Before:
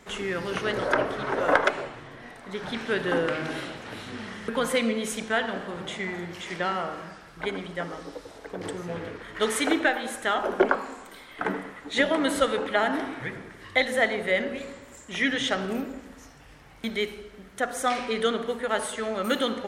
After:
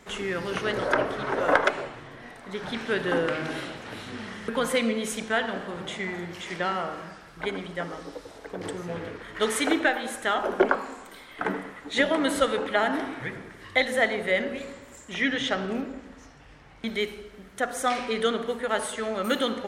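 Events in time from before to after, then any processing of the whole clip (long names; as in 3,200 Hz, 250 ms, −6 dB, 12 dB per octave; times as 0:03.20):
0:15.14–0:16.88: high-frequency loss of the air 61 metres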